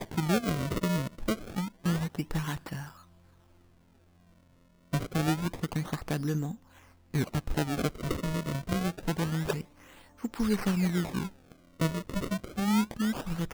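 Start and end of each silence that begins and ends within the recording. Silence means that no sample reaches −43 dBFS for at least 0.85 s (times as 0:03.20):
0:02.91–0:04.93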